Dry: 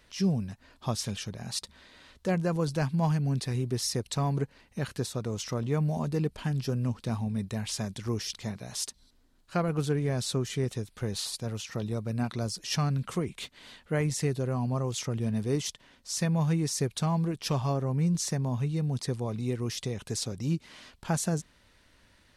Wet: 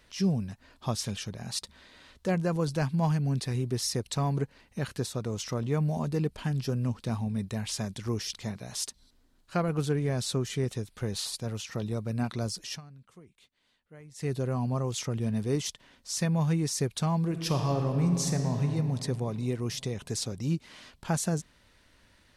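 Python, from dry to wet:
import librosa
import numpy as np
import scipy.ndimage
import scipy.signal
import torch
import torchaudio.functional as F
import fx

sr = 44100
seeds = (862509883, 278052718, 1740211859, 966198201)

y = fx.reverb_throw(x, sr, start_s=17.2, length_s=1.46, rt60_s=3.0, drr_db=4.5)
y = fx.edit(y, sr, fx.fade_down_up(start_s=12.62, length_s=1.71, db=-22.0, fade_s=0.19), tone=tone)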